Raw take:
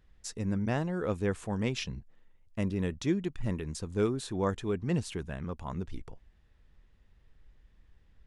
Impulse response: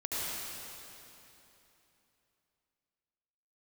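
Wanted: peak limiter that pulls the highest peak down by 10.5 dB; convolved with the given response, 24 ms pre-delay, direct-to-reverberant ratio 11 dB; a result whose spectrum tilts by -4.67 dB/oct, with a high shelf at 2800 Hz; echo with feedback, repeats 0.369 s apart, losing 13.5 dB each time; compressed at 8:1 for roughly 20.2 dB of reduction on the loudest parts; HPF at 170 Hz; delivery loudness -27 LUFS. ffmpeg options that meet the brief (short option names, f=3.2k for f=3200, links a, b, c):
-filter_complex "[0:a]highpass=170,highshelf=f=2.8k:g=4,acompressor=threshold=-46dB:ratio=8,alimiter=level_in=15dB:limit=-24dB:level=0:latency=1,volume=-15dB,aecho=1:1:369|738:0.211|0.0444,asplit=2[a][b];[1:a]atrim=start_sample=2205,adelay=24[c];[b][c]afir=irnorm=-1:irlink=0,volume=-17dB[d];[a][d]amix=inputs=2:normalize=0,volume=24dB"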